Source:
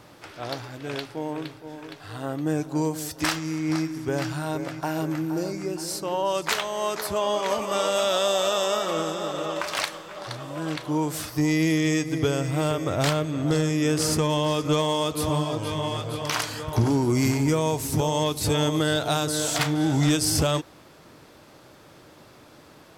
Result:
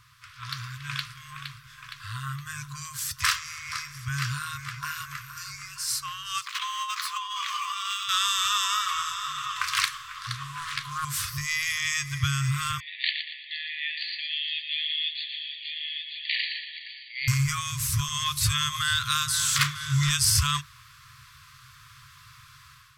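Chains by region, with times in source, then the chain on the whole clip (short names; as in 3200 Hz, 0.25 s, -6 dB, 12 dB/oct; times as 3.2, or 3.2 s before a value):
6.41–8.09 median filter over 3 samples + rippled Chebyshev high-pass 780 Hz, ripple 6 dB + negative-ratio compressor -33 dBFS, ratio -0.5
10.34–11.05 notches 50/100/150/200/250/300/350/400 Hz + doubler 12 ms -6 dB + Doppler distortion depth 0.43 ms
12.8–17.28 brick-wall FIR band-pass 1700–4700 Hz + feedback echo 0.117 s, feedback 37%, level -8 dB
whole clip: FFT band-reject 150–1000 Hz; AGC gain up to 8 dB; gain -4.5 dB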